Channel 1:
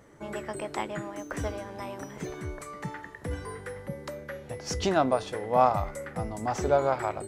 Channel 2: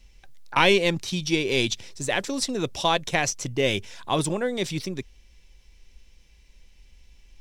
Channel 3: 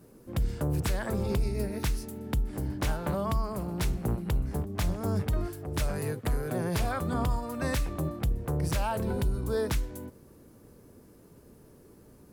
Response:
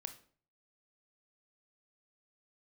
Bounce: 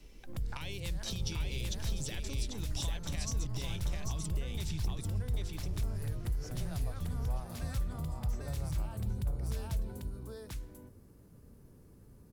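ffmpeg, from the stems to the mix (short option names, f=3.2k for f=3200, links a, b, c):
-filter_complex "[0:a]adelay=1750,volume=-17dB,asplit=2[a][b];[b]volume=-11dB[c];[1:a]acompressor=threshold=-30dB:ratio=6,volume=-2.5dB,asplit=2[d][e];[e]volume=-7.5dB[f];[2:a]bandreject=f=74.29:t=h:w=4,bandreject=f=148.58:t=h:w=4,volume=-9dB,asplit=2[g][h];[h]volume=-3dB[i];[d][g]amix=inputs=2:normalize=0,asubboost=boost=4:cutoff=180,acompressor=threshold=-30dB:ratio=6,volume=0dB[j];[c][f][i]amix=inputs=3:normalize=0,aecho=0:1:793:1[k];[a][j][k]amix=inputs=3:normalize=0,acrossover=split=140|3000[l][m][n];[m]acompressor=threshold=-45dB:ratio=6[o];[l][o][n]amix=inputs=3:normalize=0"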